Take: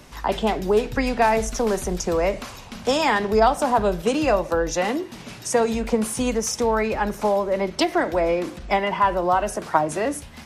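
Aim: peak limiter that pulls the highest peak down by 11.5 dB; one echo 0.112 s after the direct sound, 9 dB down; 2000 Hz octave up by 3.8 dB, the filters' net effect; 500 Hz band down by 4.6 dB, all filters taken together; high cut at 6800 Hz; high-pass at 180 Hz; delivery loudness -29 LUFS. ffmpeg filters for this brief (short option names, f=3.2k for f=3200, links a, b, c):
-af "highpass=180,lowpass=6.8k,equalizer=f=500:t=o:g=-6,equalizer=f=2k:t=o:g=5,alimiter=limit=-16.5dB:level=0:latency=1,aecho=1:1:112:0.355,volume=-3dB"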